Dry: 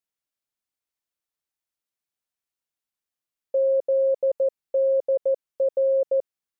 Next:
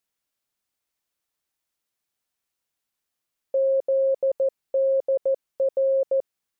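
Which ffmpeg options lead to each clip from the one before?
-af "alimiter=limit=0.0631:level=0:latency=1:release=10,volume=2.11"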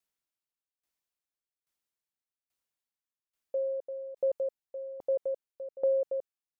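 -af "aeval=exprs='val(0)*pow(10,-19*if(lt(mod(1.2*n/s,1),2*abs(1.2)/1000),1-mod(1.2*n/s,1)/(2*abs(1.2)/1000),(mod(1.2*n/s,1)-2*abs(1.2)/1000)/(1-2*abs(1.2)/1000))/20)':c=same,volume=0.708"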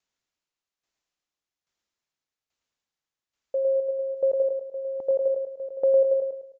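-filter_complex "[0:a]asplit=2[s0][s1];[s1]aecho=0:1:106|212|318|424|530:0.596|0.22|0.0815|0.0302|0.0112[s2];[s0][s2]amix=inputs=2:normalize=0,aresample=16000,aresample=44100,volume=1.78"

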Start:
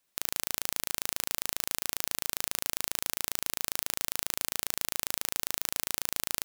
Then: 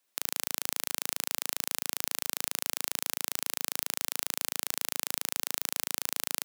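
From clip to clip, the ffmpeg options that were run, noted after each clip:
-af "highpass=220"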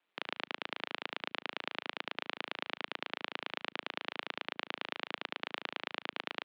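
-af "aeval=exprs='val(0)*sin(2*PI*87*n/s)':c=same,highpass=f=280:t=q:w=0.5412,highpass=f=280:t=q:w=1.307,lowpass=f=3500:t=q:w=0.5176,lowpass=f=3500:t=q:w=0.7071,lowpass=f=3500:t=q:w=1.932,afreqshift=-81,volume=1.58"

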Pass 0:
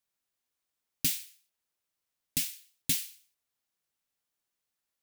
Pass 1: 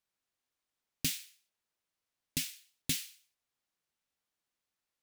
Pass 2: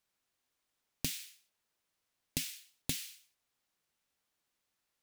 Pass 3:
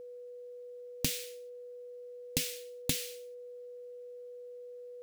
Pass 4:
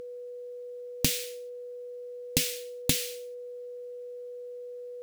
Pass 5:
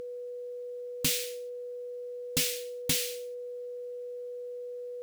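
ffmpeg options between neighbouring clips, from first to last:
-af "highshelf=f=8600:g=-9"
-af "acompressor=threshold=0.0158:ratio=12,volume=1.68"
-af "aeval=exprs='val(0)+0.00398*sin(2*PI*490*n/s)':c=same,volume=1.58"
-af "acompressor=mode=upward:threshold=0.002:ratio=2.5,volume=2"
-af "asoftclip=type=hard:threshold=0.0708,volume=1.19"

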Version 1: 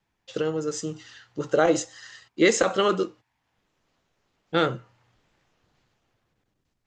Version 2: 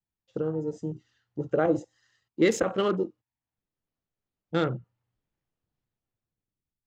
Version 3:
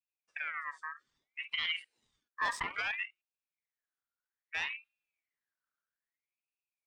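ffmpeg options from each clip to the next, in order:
-af "afwtdn=0.0224,lowshelf=f=360:g=10.5,volume=0.422"
-af "asoftclip=type=tanh:threshold=0.15,aeval=exprs='val(0)*sin(2*PI*2000*n/s+2000*0.3/0.61*sin(2*PI*0.61*n/s))':c=same,volume=0.473"

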